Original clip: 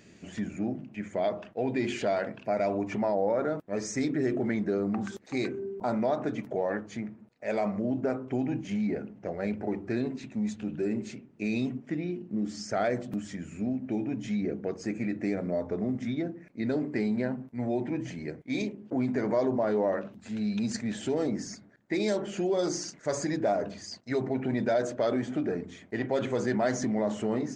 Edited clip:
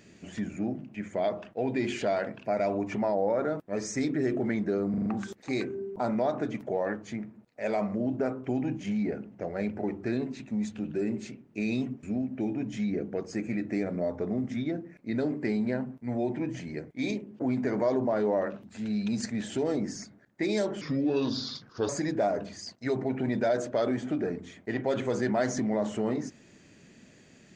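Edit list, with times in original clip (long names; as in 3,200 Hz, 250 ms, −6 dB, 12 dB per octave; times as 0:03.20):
0:04.90: stutter 0.04 s, 5 plays
0:11.87–0:13.54: remove
0:22.32–0:23.14: play speed 76%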